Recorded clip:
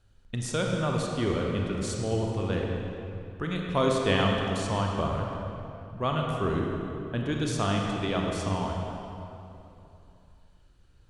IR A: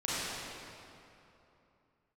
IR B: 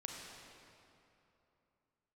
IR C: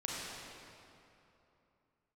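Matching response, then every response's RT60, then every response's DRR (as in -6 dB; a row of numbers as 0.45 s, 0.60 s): B; 3.0 s, 3.0 s, 3.0 s; -10.0 dB, -0.5 dB, -5.0 dB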